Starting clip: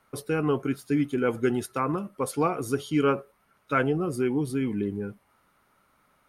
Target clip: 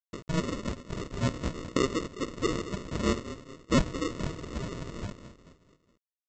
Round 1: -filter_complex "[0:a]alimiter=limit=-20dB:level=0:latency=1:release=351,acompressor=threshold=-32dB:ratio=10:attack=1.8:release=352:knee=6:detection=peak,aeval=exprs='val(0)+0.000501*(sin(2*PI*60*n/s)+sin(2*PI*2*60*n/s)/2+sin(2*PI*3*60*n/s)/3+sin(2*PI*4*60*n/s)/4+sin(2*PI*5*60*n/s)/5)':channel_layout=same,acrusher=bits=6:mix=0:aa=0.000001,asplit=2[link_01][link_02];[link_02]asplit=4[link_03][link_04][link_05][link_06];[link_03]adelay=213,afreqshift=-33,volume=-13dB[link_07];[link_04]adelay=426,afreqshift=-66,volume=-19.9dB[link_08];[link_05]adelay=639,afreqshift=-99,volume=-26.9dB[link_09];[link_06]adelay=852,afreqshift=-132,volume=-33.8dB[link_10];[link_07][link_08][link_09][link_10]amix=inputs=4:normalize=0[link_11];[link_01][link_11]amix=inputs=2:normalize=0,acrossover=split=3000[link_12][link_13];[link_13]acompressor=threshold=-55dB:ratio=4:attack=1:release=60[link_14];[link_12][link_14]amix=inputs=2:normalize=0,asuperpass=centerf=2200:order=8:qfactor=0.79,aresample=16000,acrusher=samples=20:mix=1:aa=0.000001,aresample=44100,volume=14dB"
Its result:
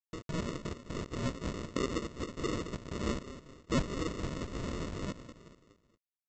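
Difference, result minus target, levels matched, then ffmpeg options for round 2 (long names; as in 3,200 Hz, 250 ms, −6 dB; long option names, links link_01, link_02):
downward compressor: peak gain reduction +8 dB
-filter_complex "[0:a]alimiter=limit=-20dB:level=0:latency=1:release=351,acompressor=threshold=-22dB:ratio=10:attack=1.8:release=352:knee=6:detection=peak,aeval=exprs='val(0)+0.000501*(sin(2*PI*60*n/s)+sin(2*PI*2*60*n/s)/2+sin(2*PI*3*60*n/s)/3+sin(2*PI*4*60*n/s)/4+sin(2*PI*5*60*n/s)/5)':channel_layout=same,acrusher=bits=6:mix=0:aa=0.000001,asplit=2[link_01][link_02];[link_02]asplit=4[link_03][link_04][link_05][link_06];[link_03]adelay=213,afreqshift=-33,volume=-13dB[link_07];[link_04]adelay=426,afreqshift=-66,volume=-19.9dB[link_08];[link_05]adelay=639,afreqshift=-99,volume=-26.9dB[link_09];[link_06]adelay=852,afreqshift=-132,volume=-33.8dB[link_10];[link_07][link_08][link_09][link_10]amix=inputs=4:normalize=0[link_11];[link_01][link_11]amix=inputs=2:normalize=0,acrossover=split=3000[link_12][link_13];[link_13]acompressor=threshold=-55dB:ratio=4:attack=1:release=60[link_14];[link_12][link_14]amix=inputs=2:normalize=0,asuperpass=centerf=2200:order=8:qfactor=0.79,aresample=16000,acrusher=samples=20:mix=1:aa=0.000001,aresample=44100,volume=14dB"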